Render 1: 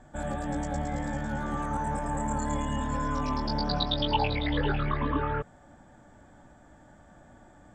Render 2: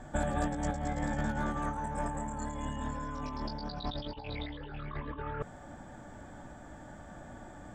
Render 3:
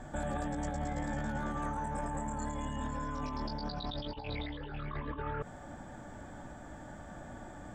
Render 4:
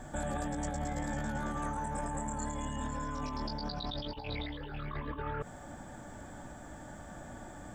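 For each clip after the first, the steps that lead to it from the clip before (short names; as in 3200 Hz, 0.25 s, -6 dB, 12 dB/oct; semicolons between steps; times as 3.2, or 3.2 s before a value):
negative-ratio compressor -34 dBFS, ratio -0.5
limiter -28.5 dBFS, peak gain reduction 9.5 dB; gain +1 dB
high shelf 6900 Hz +10.5 dB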